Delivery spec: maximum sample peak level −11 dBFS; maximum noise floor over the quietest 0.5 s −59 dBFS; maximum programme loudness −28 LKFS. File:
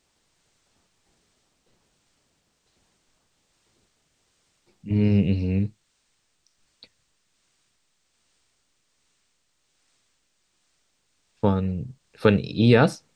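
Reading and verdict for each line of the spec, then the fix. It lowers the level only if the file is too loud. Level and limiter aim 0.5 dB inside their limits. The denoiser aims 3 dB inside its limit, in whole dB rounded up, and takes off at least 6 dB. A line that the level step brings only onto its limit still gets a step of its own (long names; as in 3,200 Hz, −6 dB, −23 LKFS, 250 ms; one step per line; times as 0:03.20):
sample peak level −4.5 dBFS: out of spec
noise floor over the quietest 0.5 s −71 dBFS: in spec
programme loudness −22.5 LKFS: out of spec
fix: level −6 dB
brickwall limiter −11.5 dBFS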